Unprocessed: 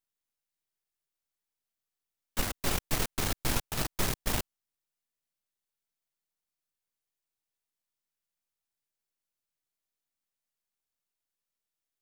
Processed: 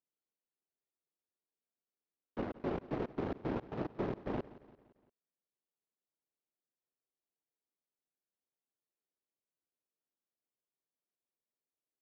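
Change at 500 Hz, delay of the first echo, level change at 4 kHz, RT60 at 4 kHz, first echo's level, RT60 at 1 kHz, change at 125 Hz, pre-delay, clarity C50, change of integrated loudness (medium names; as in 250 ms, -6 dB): +1.0 dB, 172 ms, -24.0 dB, no reverb, -18.0 dB, no reverb, -7.0 dB, no reverb, no reverb, -7.5 dB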